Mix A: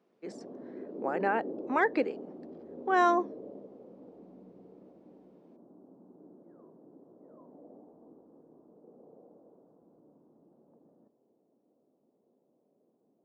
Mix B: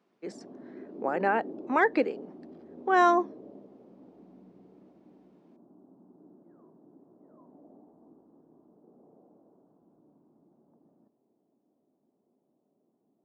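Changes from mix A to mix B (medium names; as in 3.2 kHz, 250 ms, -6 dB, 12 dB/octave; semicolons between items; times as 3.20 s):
speech +3.0 dB; background: add peaking EQ 500 Hz -9 dB 0.4 oct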